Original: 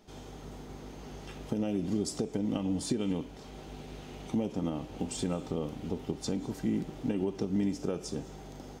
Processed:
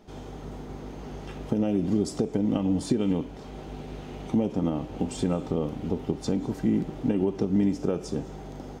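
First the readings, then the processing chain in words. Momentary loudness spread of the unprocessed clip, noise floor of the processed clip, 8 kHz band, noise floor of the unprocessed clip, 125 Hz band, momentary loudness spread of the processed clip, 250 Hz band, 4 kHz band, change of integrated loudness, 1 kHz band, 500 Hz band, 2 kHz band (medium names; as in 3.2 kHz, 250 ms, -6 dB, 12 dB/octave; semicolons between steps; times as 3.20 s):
14 LU, -41 dBFS, -1.0 dB, -47 dBFS, +6.5 dB, 15 LU, +6.5 dB, +0.5 dB, +6.0 dB, +5.5 dB, +6.0 dB, +3.0 dB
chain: treble shelf 2.5 kHz -8.5 dB; trim +6.5 dB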